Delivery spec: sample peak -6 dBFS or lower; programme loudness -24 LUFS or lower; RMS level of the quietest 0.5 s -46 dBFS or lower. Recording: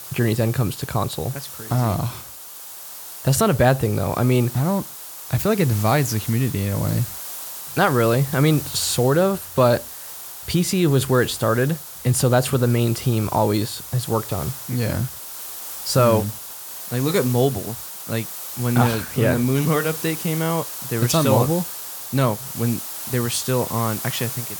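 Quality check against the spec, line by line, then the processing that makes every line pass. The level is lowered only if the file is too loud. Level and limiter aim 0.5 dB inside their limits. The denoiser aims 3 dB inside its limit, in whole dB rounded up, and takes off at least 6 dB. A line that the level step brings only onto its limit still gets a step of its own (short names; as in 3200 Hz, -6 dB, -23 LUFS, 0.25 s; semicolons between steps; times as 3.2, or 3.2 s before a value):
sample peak -3.0 dBFS: fail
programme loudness -21.0 LUFS: fail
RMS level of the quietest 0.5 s -38 dBFS: fail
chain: denoiser 8 dB, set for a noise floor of -38 dBFS; gain -3.5 dB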